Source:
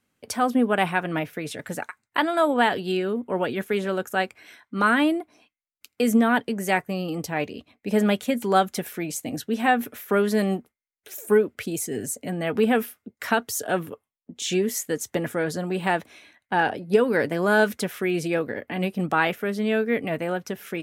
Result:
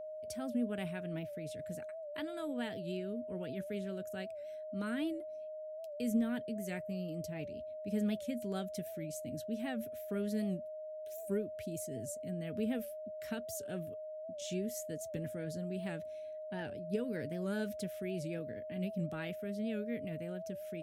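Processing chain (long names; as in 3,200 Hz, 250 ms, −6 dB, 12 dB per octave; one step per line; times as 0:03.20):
guitar amp tone stack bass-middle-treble 10-0-1
steady tone 620 Hz −47 dBFS
wow of a warped record 78 rpm, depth 100 cents
level +5 dB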